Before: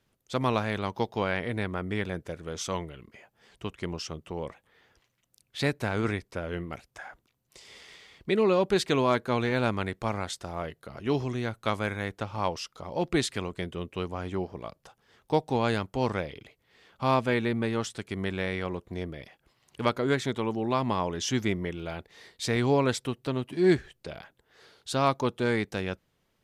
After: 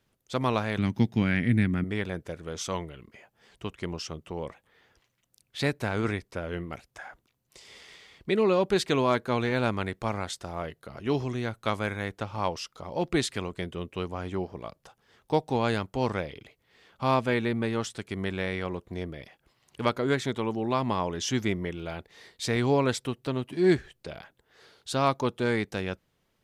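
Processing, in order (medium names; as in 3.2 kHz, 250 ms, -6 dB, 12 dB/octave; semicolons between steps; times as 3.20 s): 0.78–1.84 s: graphic EQ 125/250/500/1000/2000/4000/8000 Hz +10/+12/-10/-10/+7/-4/+3 dB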